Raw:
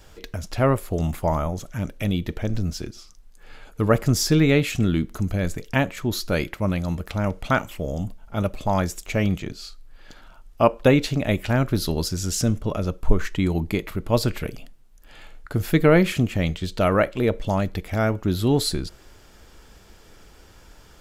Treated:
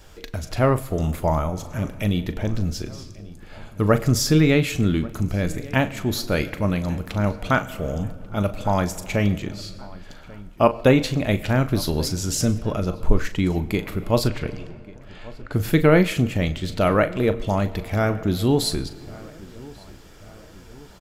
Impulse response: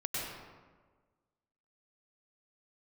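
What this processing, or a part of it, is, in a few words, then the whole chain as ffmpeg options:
compressed reverb return: -filter_complex "[0:a]asplit=2[link_01][link_02];[1:a]atrim=start_sample=2205[link_03];[link_02][link_03]afir=irnorm=-1:irlink=0,acompressor=threshold=-21dB:ratio=6,volume=-13.5dB[link_04];[link_01][link_04]amix=inputs=2:normalize=0,asettb=1/sr,asplit=3[link_05][link_06][link_07];[link_05]atrim=end=14.274[link_08];[link_06]atrim=start=14.27:end=15.53,asetpts=PTS-STARTPTS,afade=type=in:duration=0.004:curve=qsin,afade=type=out:start_time=1.256:duration=0.004:curve=qsin,lowpass=6000[link_09];[link_07]atrim=start=15.526[link_10];[link_08][link_09]acrossfade=duration=0.004:curve1=hsin:curve2=qsin[link_11];[link_11][link_10]acrossfade=duration=0.004:curve1=qsin:curve2=hsin,asplit=2[link_12][link_13];[link_13]adelay=39,volume=-12dB[link_14];[link_12][link_14]amix=inputs=2:normalize=0,asplit=2[link_15][link_16];[link_16]adelay=1140,lowpass=frequency=2400:poles=1,volume=-21dB,asplit=2[link_17][link_18];[link_18]adelay=1140,lowpass=frequency=2400:poles=1,volume=0.51,asplit=2[link_19][link_20];[link_20]adelay=1140,lowpass=frequency=2400:poles=1,volume=0.51,asplit=2[link_21][link_22];[link_22]adelay=1140,lowpass=frequency=2400:poles=1,volume=0.51[link_23];[link_15][link_17][link_19][link_21][link_23]amix=inputs=5:normalize=0"

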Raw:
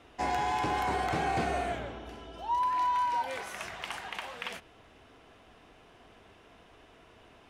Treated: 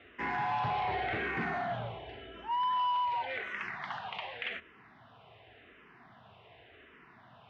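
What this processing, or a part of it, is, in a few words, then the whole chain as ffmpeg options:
barber-pole phaser into a guitar amplifier: -filter_complex "[0:a]asplit=2[link_01][link_02];[link_02]afreqshift=-0.89[link_03];[link_01][link_03]amix=inputs=2:normalize=1,asoftclip=type=tanh:threshold=-31dB,highpass=100,equalizer=frequency=120:width_type=q:width=4:gain=7,equalizer=frequency=300:width_type=q:width=4:gain=-7,equalizer=frequency=510:width_type=q:width=4:gain=-5,equalizer=frequency=1900:width_type=q:width=4:gain=5,lowpass=frequency=3600:width=0.5412,lowpass=frequency=3600:width=1.3066,volume=3.5dB"

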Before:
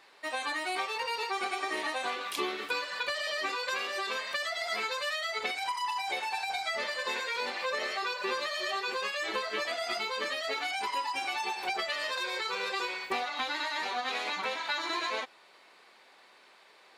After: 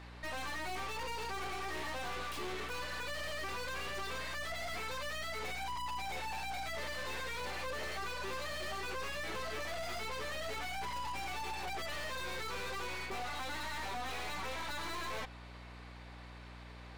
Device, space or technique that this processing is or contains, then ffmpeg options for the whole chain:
valve amplifier with mains hum: -af "aeval=exprs='(tanh(200*val(0)+0.65)-tanh(0.65))/200':channel_layout=same,aeval=exprs='val(0)+0.00126*(sin(2*PI*60*n/s)+sin(2*PI*2*60*n/s)/2+sin(2*PI*3*60*n/s)/3+sin(2*PI*4*60*n/s)/4+sin(2*PI*5*60*n/s)/5)':channel_layout=same,highshelf=frequency=3600:gain=-7,volume=7.5dB"

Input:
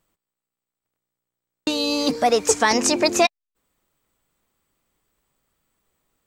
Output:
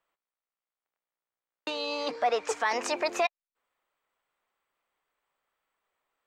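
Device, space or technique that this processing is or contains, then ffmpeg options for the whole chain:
DJ mixer with the lows and highs turned down: -filter_complex "[0:a]asettb=1/sr,asplit=3[link_01][link_02][link_03];[link_01]atrim=end=1.704[link_04];[link_02]atrim=start=1.7:end=2.49,asetpts=PTS-STARTPTS,afade=type=in:duration=0.004:curve=qsin,afade=type=out:start_time=0.786:duration=0.004:curve=qsin,lowpass=7300[link_05];[link_03]atrim=start=2.486[link_06];[link_04][link_05]acrossfade=duration=0.004:curve1=hsin:curve2=qsin[link_07];[link_07][link_06]acrossfade=duration=0.004:curve1=qsin:curve2=hsin,acrossover=split=500 3200:gain=0.0891 1 0.178[link_08][link_09][link_10];[link_08][link_09][link_10]amix=inputs=3:normalize=0,alimiter=limit=-14.5dB:level=0:latency=1:release=21,volume=-3dB"

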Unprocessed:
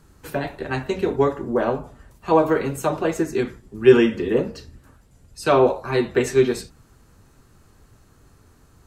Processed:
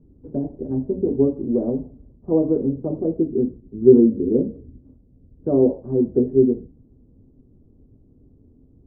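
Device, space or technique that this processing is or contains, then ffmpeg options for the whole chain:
under water: -af "lowpass=frequency=490:width=0.5412,lowpass=frequency=490:width=1.3066,equalizer=frequency=260:width_type=o:width=0.41:gain=9"

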